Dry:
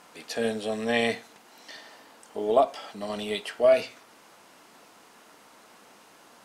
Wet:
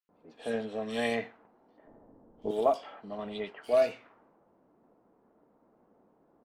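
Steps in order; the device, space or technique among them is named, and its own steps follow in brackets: cassette deck with a dynamic noise filter (white noise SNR 32 dB; low-pass opened by the level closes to 460 Hz, open at -21 dBFS); 1.78–2.42 tilt -4 dB/oct; bands offset in time highs, lows 90 ms, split 2900 Hz; gain -5 dB

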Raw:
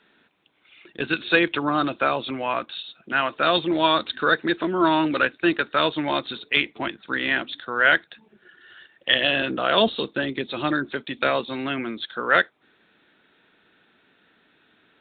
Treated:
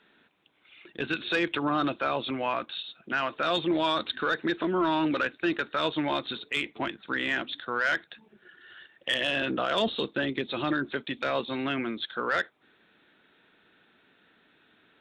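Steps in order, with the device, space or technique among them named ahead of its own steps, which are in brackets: soft clipper into limiter (soft clip -9.5 dBFS, distortion -19 dB; limiter -16 dBFS, peak gain reduction 6 dB); gain -2 dB

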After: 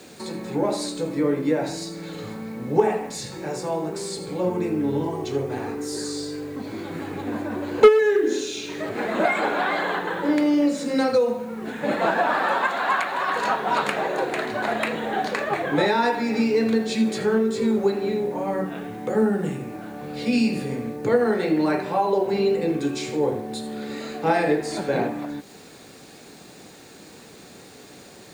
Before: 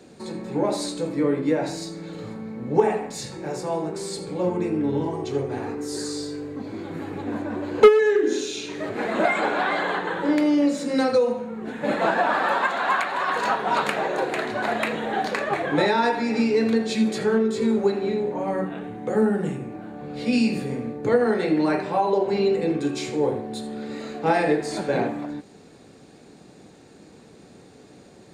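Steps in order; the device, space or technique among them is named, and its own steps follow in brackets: noise-reduction cassette on a plain deck (mismatched tape noise reduction encoder only; wow and flutter 17 cents; white noise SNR 35 dB)

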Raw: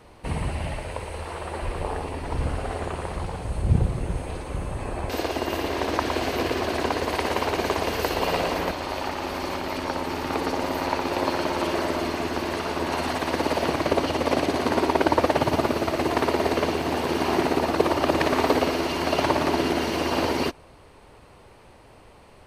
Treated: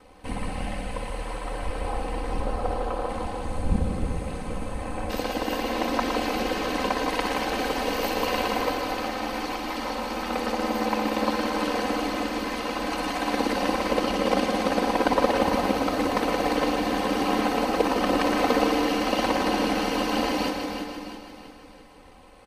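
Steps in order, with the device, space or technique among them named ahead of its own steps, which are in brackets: 2.4–3.09 graphic EQ 125/500/1000/2000/8000 Hz -12/+5/+5/-7/-7 dB; feedback echo 0.333 s, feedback 47%, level -8 dB; ring-modulated robot voice (ring modulator 40 Hz; comb 3.9 ms, depth 84%); feedback echo 0.156 s, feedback 55%, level -7.5 dB; gain -1.5 dB

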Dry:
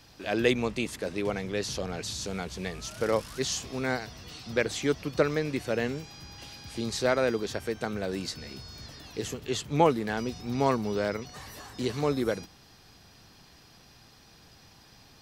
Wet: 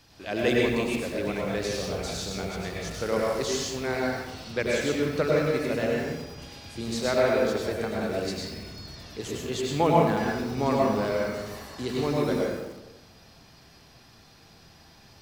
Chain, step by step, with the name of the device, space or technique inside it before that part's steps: bathroom (reverb RT60 1.1 s, pre-delay 93 ms, DRR -3.5 dB); lo-fi delay 86 ms, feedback 35%, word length 6-bit, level -12.5 dB; gain -2.5 dB

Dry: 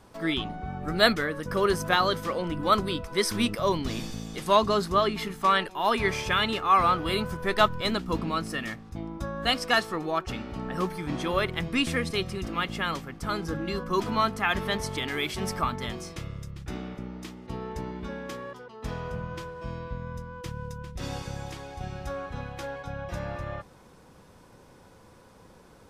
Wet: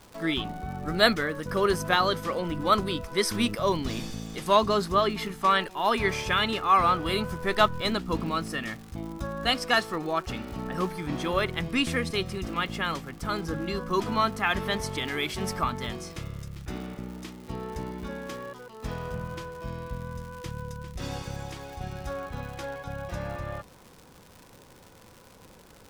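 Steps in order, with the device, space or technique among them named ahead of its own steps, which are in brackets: vinyl LP (crackle 150/s -38 dBFS; pink noise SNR 36 dB)

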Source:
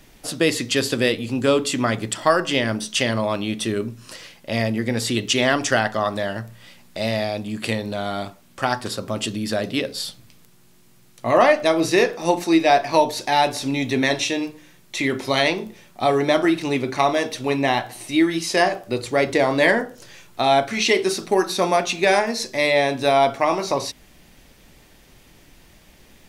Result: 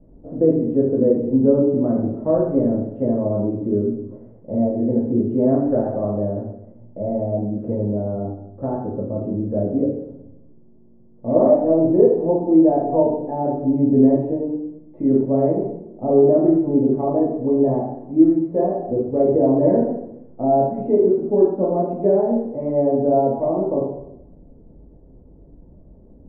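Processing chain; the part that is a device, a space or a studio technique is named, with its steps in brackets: next room (LPF 580 Hz 24 dB/oct; reverb RT60 0.80 s, pre-delay 3 ms, DRR -5 dB); gain -1.5 dB

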